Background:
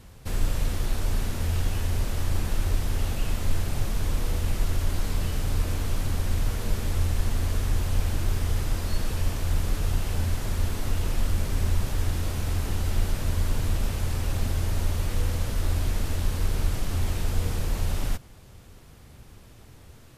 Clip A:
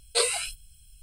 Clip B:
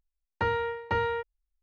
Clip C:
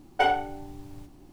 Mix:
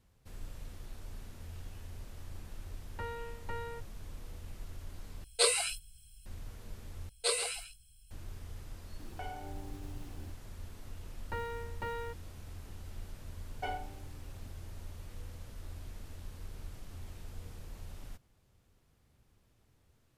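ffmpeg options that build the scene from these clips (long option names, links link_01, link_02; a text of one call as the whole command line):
ffmpeg -i bed.wav -i cue0.wav -i cue1.wav -i cue2.wav -filter_complex "[2:a]asplit=2[link_01][link_02];[1:a]asplit=2[link_03][link_04];[3:a]asplit=2[link_05][link_06];[0:a]volume=-20dB[link_07];[link_04]aecho=1:1:134:0.316[link_08];[link_05]acompressor=threshold=-42dB:ratio=6:attack=3.2:release=140:knee=1:detection=peak[link_09];[link_02]acrusher=bits=7:mode=log:mix=0:aa=0.000001[link_10];[link_07]asplit=3[link_11][link_12][link_13];[link_11]atrim=end=5.244[link_14];[link_03]atrim=end=1.02,asetpts=PTS-STARTPTS,volume=-3dB[link_15];[link_12]atrim=start=6.256:end=7.094[link_16];[link_08]atrim=end=1.02,asetpts=PTS-STARTPTS,volume=-7.5dB[link_17];[link_13]atrim=start=8.106[link_18];[link_01]atrim=end=1.62,asetpts=PTS-STARTPTS,volume=-14dB,afade=type=in:duration=0.004:curve=hsin,afade=type=out:start_time=1.616:duration=0.004:curve=hsin,adelay=2580[link_19];[link_09]atrim=end=1.32,asetpts=PTS-STARTPTS,volume=-0.5dB,afade=type=in:duration=0.004:curve=hsin,afade=type=out:start_time=1.316:duration=0.004:curve=hsin,adelay=9000[link_20];[link_10]atrim=end=1.62,asetpts=PTS-STARTPTS,volume=-11.5dB,afade=type=in:duration=0.004:curve=hsin,afade=type=out:start_time=1.616:duration=0.004:curve=hsin,adelay=10910[link_21];[link_06]atrim=end=1.32,asetpts=PTS-STARTPTS,volume=-16dB,afade=type=in:duration=0.004:curve=hsin,afade=type=out:start_time=1.316:duration=0.004:curve=hsin,adelay=13430[link_22];[link_14][link_15]acrossfade=duration=0.004:curve1=hsin:curve2=hsin[link_23];[link_23][link_16]acrossfade=duration=0.004:curve1=hsin:curve2=hsin[link_24];[link_24][link_17]acrossfade=duration=0.004:curve1=hsin:curve2=hsin[link_25];[link_25][link_18]acrossfade=duration=0.004:curve1=hsin:curve2=hsin[link_26];[link_26][link_19][link_20][link_21][link_22]amix=inputs=5:normalize=0" out.wav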